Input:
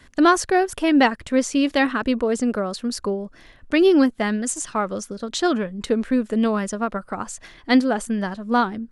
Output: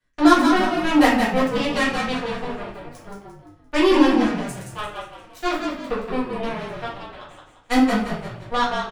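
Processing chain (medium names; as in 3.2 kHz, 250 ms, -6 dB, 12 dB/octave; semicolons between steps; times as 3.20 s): Chebyshev shaper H 7 -16 dB, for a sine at -4.5 dBFS; peaking EQ 230 Hz -8.5 dB 0.29 oct; in parallel at -7 dB: crossover distortion -40 dBFS; on the sum: frequency-shifting echo 173 ms, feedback 40%, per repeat -48 Hz, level -5 dB; reverberation RT60 0.55 s, pre-delay 4 ms, DRR -8 dB; trim -12 dB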